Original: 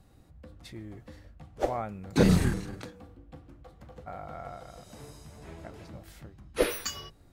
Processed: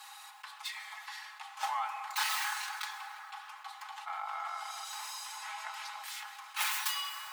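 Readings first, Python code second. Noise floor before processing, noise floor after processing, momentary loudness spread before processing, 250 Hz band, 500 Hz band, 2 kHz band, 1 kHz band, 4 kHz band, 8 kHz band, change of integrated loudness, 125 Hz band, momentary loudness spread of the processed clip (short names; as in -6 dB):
-58 dBFS, -51 dBFS, 23 LU, under -40 dB, -26.0 dB, +4.0 dB, +3.5 dB, +4.5 dB, +2.0 dB, -7.5 dB, under -40 dB, 14 LU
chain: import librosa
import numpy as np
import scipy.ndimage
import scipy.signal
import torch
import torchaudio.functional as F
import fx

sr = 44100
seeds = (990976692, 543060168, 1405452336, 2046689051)

y = fx.tracing_dist(x, sr, depth_ms=0.4)
y = scipy.signal.sosfilt(scipy.signal.cheby1(6, 3, 790.0, 'highpass', fs=sr, output='sos'), y)
y = y + 0.82 * np.pad(y, (int(4.7 * sr / 1000.0), 0))[:len(y)]
y = fx.rev_plate(y, sr, seeds[0], rt60_s=2.5, hf_ratio=0.55, predelay_ms=0, drr_db=11.5)
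y = fx.env_flatten(y, sr, amount_pct=50)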